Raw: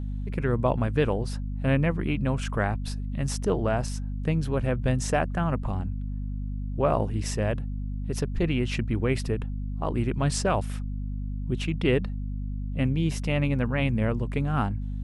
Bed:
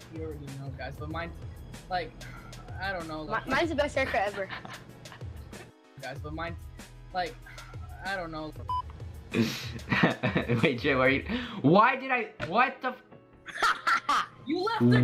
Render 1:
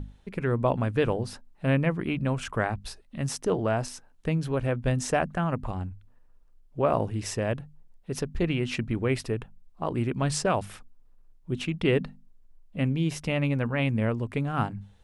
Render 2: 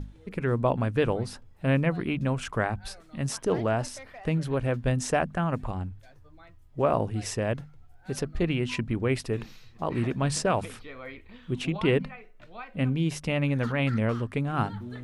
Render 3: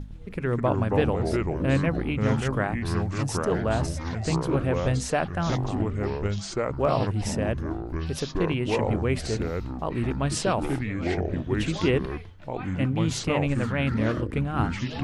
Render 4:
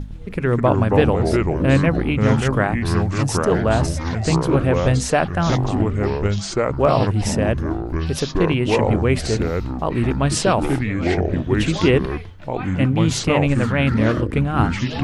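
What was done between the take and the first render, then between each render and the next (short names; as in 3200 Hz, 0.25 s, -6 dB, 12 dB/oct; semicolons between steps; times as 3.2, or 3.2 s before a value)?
notches 50/100/150/200/250 Hz
add bed -18 dB
echoes that change speed 0.108 s, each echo -4 st, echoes 3
gain +7.5 dB; limiter -3 dBFS, peak gain reduction 1 dB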